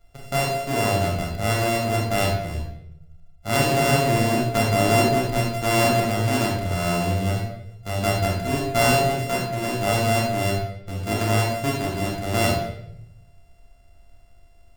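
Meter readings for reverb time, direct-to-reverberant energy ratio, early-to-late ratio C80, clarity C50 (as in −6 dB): 0.80 s, −3.0 dB, 5.0 dB, 1.0 dB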